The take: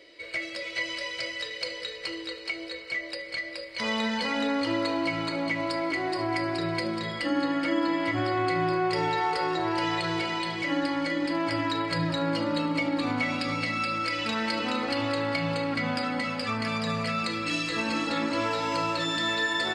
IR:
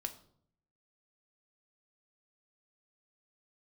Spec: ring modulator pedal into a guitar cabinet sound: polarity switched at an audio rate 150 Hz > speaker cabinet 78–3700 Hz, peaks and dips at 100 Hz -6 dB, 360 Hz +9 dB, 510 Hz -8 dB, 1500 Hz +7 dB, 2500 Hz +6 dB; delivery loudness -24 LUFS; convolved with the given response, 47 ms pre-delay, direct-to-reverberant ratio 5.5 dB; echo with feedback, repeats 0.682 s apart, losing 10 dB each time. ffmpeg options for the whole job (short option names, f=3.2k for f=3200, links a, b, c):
-filter_complex "[0:a]aecho=1:1:682|1364|2046|2728:0.316|0.101|0.0324|0.0104,asplit=2[a][b];[1:a]atrim=start_sample=2205,adelay=47[c];[b][c]afir=irnorm=-1:irlink=0,volume=-4.5dB[d];[a][d]amix=inputs=2:normalize=0,aeval=exprs='val(0)*sgn(sin(2*PI*150*n/s))':c=same,highpass=78,equalizer=f=100:t=q:w=4:g=-6,equalizer=f=360:t=q:w=4:g=9,equalizer=f=510:t=q:w=4:g=-8,equalizer=f=1.5k:t=q:w=4:g=7,equalizer=f=2.5k:t=q:w=4:g=6,lowpass=f=3.7k:w=0.5412,lowpass=f=3.7k:w=1.3066,volume=1dB"